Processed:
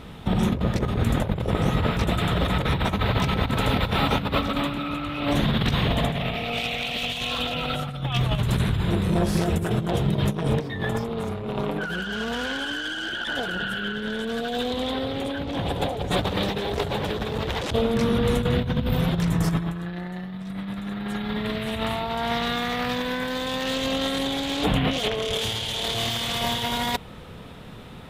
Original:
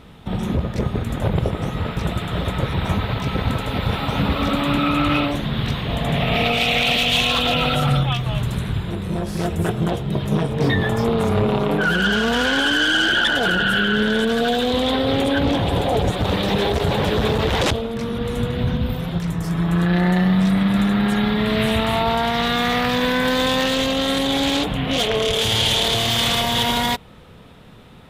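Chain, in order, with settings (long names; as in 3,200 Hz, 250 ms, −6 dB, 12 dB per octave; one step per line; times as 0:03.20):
compressor whose output falls as the input rises −23 dBFS, ratio −0.5
level −1 dB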